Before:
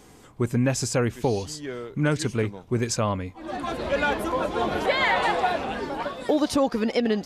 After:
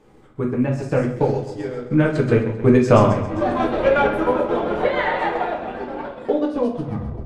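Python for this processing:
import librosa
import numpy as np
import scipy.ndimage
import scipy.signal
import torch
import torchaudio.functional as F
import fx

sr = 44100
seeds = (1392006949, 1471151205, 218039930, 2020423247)

p1 = fx.tape_stop_end(x, sr, length_s=0.69)
p2 = fx.doppler_pass(p1, sr, speed_mps=10, closest_m=4.8, pass_at_s=3.15)
p3 = fx.high_shelf(p2, sr, hz=3000.0, db=-9.5)
p4 = fx.rider(p3, sr, range_db=4, speed_s=2.0)
p5 = p3 + (p4 * 10.0 ** (2.5 / 20.0))
p6 = fx.bass_treble(p5, sr, bass_db=-2, treble_db=-6)
p7 = fx.echo_feedback(p6, sr, ms=132, feedback_pct=55, wet_db=-9)
p8 = fx.transient(p7, sr, attack_db=4, sustain_db=-11)
p9 = fx.room_shoebox(p8, sr, seeds[0], volume_m3=41.0, walls='mixed', distance_m=0.65)
y = p9 * 10.0 ** (2.0 / 20.0)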